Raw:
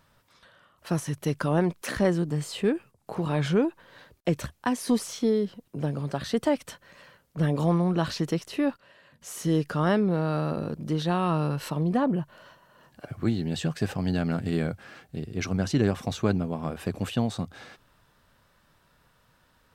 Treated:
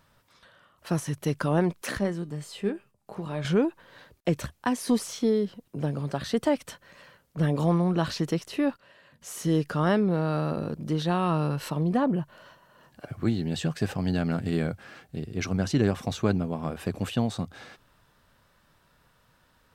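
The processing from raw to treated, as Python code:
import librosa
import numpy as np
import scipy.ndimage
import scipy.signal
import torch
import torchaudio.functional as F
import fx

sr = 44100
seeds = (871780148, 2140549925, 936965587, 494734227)

y = fx.comb_fb(x, sr, f0_hz=200.0, decay_s=0.21, harmonics='all', damping=0.0, mix_pct=60, at=(1.98, 3.45))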